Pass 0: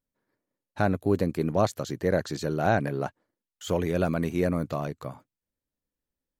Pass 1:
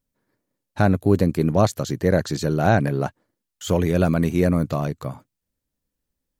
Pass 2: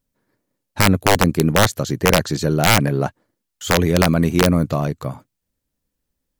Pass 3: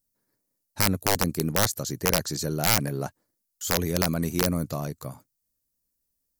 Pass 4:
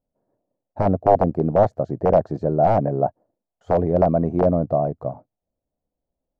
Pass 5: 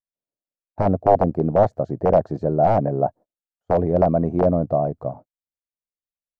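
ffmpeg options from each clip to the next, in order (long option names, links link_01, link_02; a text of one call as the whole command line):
ffmpeg -i in.wav -af "bass=frequency=250:gain=5,treble=frequency=4000:gain=3,volume=4.5dB" out.wav
ffmpeg -i in.wav -af "aeval=exprs='(mod(2.37*val(0)+1,2)-1)/2.37':channel_layout=same,volume=3.5dB" out.wav
ffmpeg -i in.wav -af "aexciter=amount=2.5:drive=8.1:freq=4500,volume=-10.5dB" out.wav
ffmpeg -i in.wav -af "lowpass=frequency=680:width_type=q:width=4.4,volume=4.5dB" out.wav
ffmpeg -i in.wav -af "agate=range=-27dB:threshold=-39dB:ratio=16:detection=peak" out.wav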